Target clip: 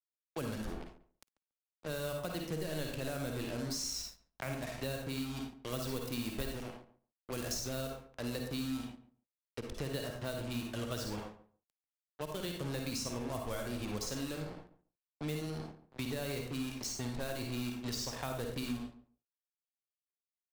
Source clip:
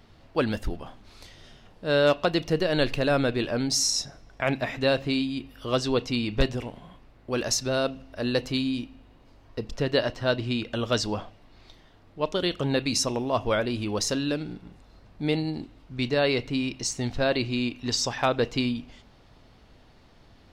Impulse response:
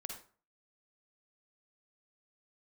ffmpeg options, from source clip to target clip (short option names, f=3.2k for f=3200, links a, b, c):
-filter_complex "[0:a]acrusher=bits=4:mix=0:aa=0.5,asettb=1/sr,asplit=3[a][b][c];[a]atrim=end=5.514[d];[b]atrim=start=5.51:end=7.82,asetpts=PTS-STARTPTS,afade=t=in:d=0.004:c=qsin,afade=t=out:st=2.306:d=0.004:c=qsin,highshelf=f=9.3k:g=12[e];[c]atrim=start=7.816[f];[d][e]acrossfade=d=0.004:c1=hsin:c2=qsin[g];[g][f]acrossfade=d=0.004:c1=qsin:c2=hsin[h];[1:a]atrim=start_sample=2205,afade=t=out:st=0.27:d=0.01,atrim=end_sample=12348[i];[h][i]afir=irnorm=-1:irlink=0,aeval=exprs='sgn(val(0))*max(abs(val(0))-0.002,0)':c=same,acrossover=split=180|7600[j][k][l];[j]acompressor=threshold=-38dB:ratio=4[m];[k]acompressor=threshold=-37dB:ratio=4[n];[l]acompressor=threshold=-43dB:ratio=4[o];[m][n][o]amix=inputs=3:normalize=0,asplit=2[p][q];[q]adelay=141,lowpass=f=1.1k:p=1,volume=-14dB,asplit=2[r][s];[s]adelay=141,lowpass=f=1.1k:p=1,volume=0.16[t];[p][r][t]amix=inputs=3:normalize=0,volume=-2.5dB"